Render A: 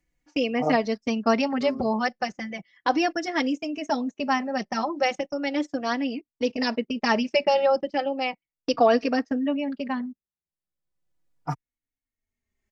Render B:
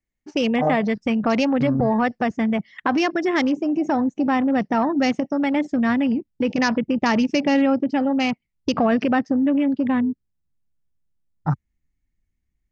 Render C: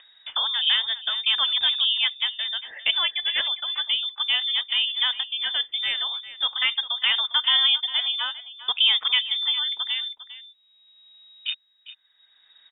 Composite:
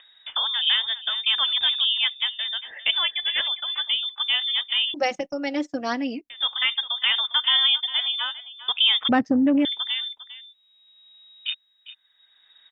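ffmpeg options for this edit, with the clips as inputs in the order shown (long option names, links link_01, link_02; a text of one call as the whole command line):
ffmpeg -i take0.wav -i take1.wav -i take2.wav -filter_complex "[2:a]asplit=3[link_01][link_02][link_03];[link_01]atrim=end=4.942[link_04];[0:a]atrim=start=4.938:end=6.302[link_05];[link_02]atrim=start=6.298:end=9.092[link_06];[1:a]atrim=start=9.088:end=9.652[link_07];[link_03]atrim=start=9.648[link_08];[link_04][link_05]acrossfade=duration=0.004:curve1=hsin:curve2=hsin[link_09];[link_09][link_06]acrossfade=duration=0.004:curve1=hsin:curve2=hsin[link_10];[link_10][link_07]acrossfade=duration=0.004:curve1=hsin:curve2=hsin[link_11];[link_11][link_08]acrossfade=duration=0.004:curve1=hsin:curve2=hsin" out.wav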